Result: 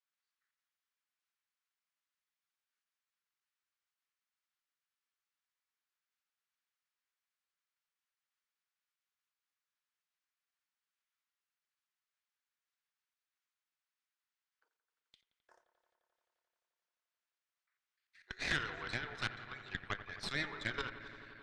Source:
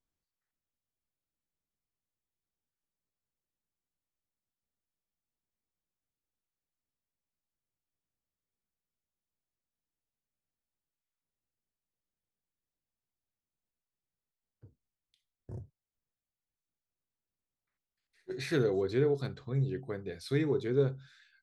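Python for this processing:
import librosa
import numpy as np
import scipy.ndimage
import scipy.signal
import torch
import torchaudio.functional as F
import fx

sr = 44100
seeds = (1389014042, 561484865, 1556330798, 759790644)

p1 = fx.dynamic_eq(x, sr, hz=1700.0, q=0.7, threshold_db=-46.0, ratio=4.0, max_db=3)
p2 = fx.level_steps(p1, sr, step_db=12)
p3 = fx.ladder_highpass(p2, sr, hz=1000.0, resonance_pct=25)
p4 = fx.cheby_harmonics(p3, sr, harmonics=(6,), levels_db=(-12,), full_scale_db=-35.5)
p5 = fx.air_absorb(p4, sr, metres=89.0)
p6 = p5 + fx.echo_wet_lowpass(p5, sr, ms=87, feedback_pct=85, hz=2400.0, wet_db=-13.0, dry=0)
y = F.gain(torch.from_numpy(p6), 15.0).numpy()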